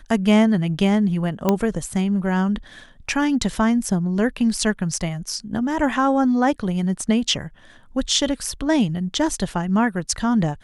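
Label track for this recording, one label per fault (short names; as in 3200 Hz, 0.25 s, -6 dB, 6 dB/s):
1.490000	1.490000	pop -5 dBFS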